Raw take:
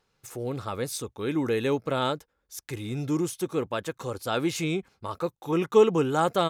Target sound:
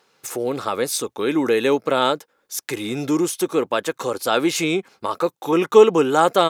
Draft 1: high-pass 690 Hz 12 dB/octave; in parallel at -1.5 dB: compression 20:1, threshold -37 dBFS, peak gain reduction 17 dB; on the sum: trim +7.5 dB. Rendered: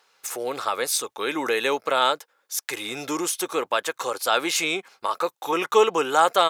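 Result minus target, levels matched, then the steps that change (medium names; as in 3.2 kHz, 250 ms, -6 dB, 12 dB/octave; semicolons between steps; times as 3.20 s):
250 Hz band -6.5 dB
change: high-pass 270 Hz 12 dB/octave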